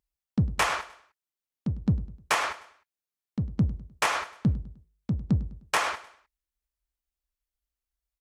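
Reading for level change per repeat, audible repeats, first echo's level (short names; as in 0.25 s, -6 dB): -8.0 dB, 3, -17.0 dB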